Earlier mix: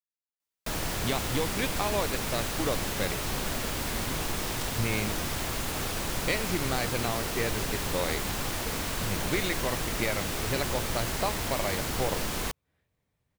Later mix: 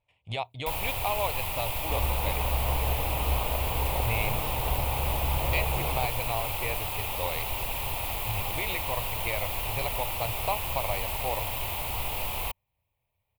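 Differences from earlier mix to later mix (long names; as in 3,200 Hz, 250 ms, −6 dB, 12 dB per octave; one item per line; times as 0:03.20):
speech: entry −0.75 s
second sound: unmuted
master: add drawn EQ curve 110 Hz 0 dB, 190 Hz −14 dB, 360 Hz −11 dB, 580 Hz −1 dB, 920 Hz +5 dB, 1,600 Hz −14 dB, 2,500 Hz +5 dB, 6,000 Hz −13 dB, 14,000 Hz +6 dB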